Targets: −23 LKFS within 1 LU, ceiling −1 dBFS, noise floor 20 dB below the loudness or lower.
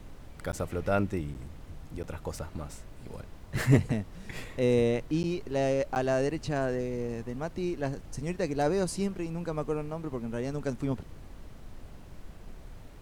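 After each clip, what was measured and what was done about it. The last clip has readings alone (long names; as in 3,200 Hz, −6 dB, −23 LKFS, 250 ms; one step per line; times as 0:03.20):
number of dropouts 5; longest dropout 9.9 ms; background noise floor −48 dBFS; target noise floor −51 dBFS; integrated loudness −31.0 LKFS; sample peak −10.0 dBFS; target loudness −23.0 LKFS
→ repair the gap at 0:00.52/0:01.34/0:02.03/0:05.23/0:05.95, 9.9 ms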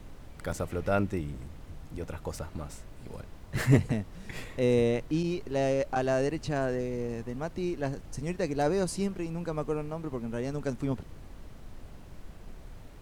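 number of dropouts 0; background noise floor −48 dBFS; target noise floor −51 dBFS
→ noise reduction from a noise print 6 dB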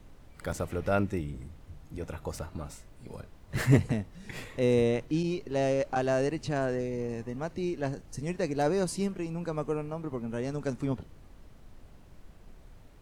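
background noise floor −53 dBFS; integrated loudness −31.0 LKFS; sample peak −10.0 dBFS; target loudness −23.0 LKFS
→ level +8 dB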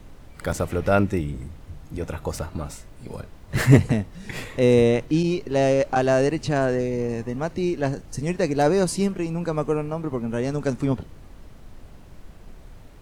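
integrated loudness −23.0 LKFS; sample peak −2.0 dBFS; background noise floor −45 dBFS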